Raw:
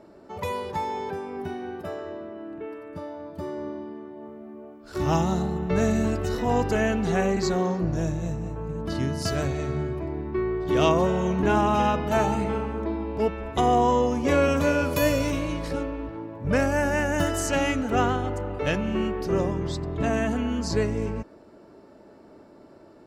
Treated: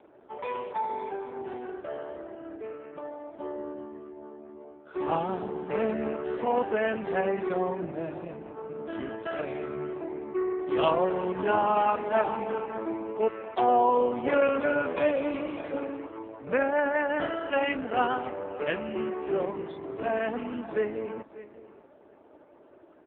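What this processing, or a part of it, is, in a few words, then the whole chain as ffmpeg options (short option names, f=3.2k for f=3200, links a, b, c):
satellite phone: -filter_complex "[0:a]asplit=3[a][b][c];[a]afade=t=out:st=6.63:d=0.02[d];[b]bandreject=f=50:t=h:w=6,bandreject=f=100:t=h:w=6,bandreject=f=150:t=h:w=6,bandreject=f=200:t=h:w=6,bandreject=f=250:t=h:w=6,bandreject=f=300:t=h:w=6,bandreject=f=350:t=h:w=6,afade=t=in:st=6.63:d=0.02,afade=t=out:st=7.58:d=0.02[e];[c]afade=t=in:st=7.58:d=0.02[f];[d][e][f]amix=inputs=3:normalize=0,asettb=1/sr,asplit=3[g][h][i];[g]atrim=end=15.244[j];[h]atrim=start=15.24:end=16.01,asetpts=PTS-STARTPTS,afade=t=in:d=0.004:c=qsin,afade=t=out:st=0.766:d=0.004:c=qsin,lowshelf=f=250:g=3.5[k];[i]atrim=start=16.006[l];[j][k]acrossfade=d=0.004:c1=hsin:c2=qsin[m];[m][l]acrossfade=d=0.004:c1=qsin:c2=hsin,highpass=340,lowpass=3.3k,aecho=1:1:592:0.141" -ar 8000 -c:a libopencore_amrnb -b:a 4750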